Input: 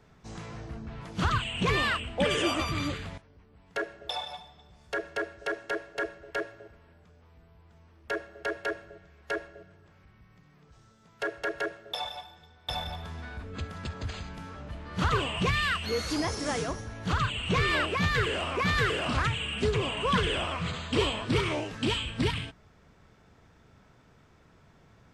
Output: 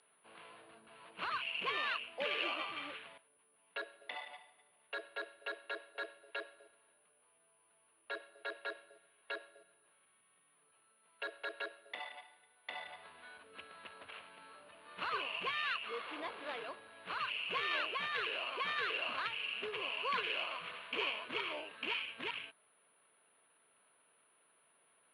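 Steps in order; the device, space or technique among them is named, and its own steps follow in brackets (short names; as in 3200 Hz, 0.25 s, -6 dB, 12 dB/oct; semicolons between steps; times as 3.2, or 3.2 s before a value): toy sound module (decimation joined by straight lines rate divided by 8×; pulse-width modulation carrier 9800 Hz; speaker cabinet 800–4600 Hz, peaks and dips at 800 Hz -7 dB, 1300 Hz -4 dB, 1900 Hz -5 dB, 2800 Hz +6 dB, 4400 Hz +5 dB); gain -3.5 dB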